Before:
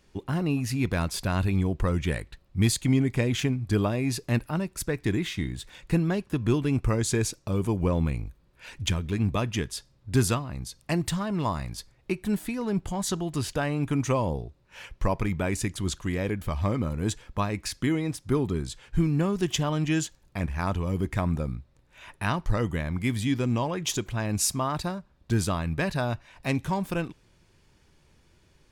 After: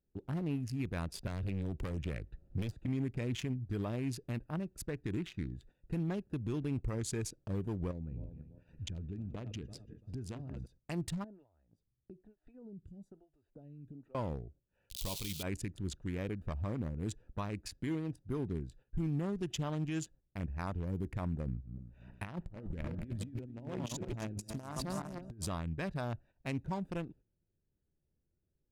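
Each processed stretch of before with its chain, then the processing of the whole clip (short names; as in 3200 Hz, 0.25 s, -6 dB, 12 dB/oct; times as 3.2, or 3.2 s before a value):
1.27–2.86 overloaded stage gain 24.5 dB + three-band squash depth 100%
7.91–10.66 regenerating reverse delay 0.169 s, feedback 54%, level -13.5 dB + LPF 8800 Hz + compressor 16:1, threshold -27 dBFS
11.24–14.15 compressor 8:1, threshold -36 dBFS + photocell phaser 1.1 Hz
14.9–15.43 switching spikes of -25.5 dBFS + resonant high shelf 2400 Hz +13.5 dB, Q 3 + doubler 20 ms -12.5 dB
21.46–25.48 regenerating reverse delay 0.162 s, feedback 58%, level -8 dB + negative-ratio compressor -30 dBFS, ratio -0.5
whole clip: Wiener smoothing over 41 samples; gate -49 dBFS, range -12 dB; limiter -18.5 dBFS; gain -8.5 dB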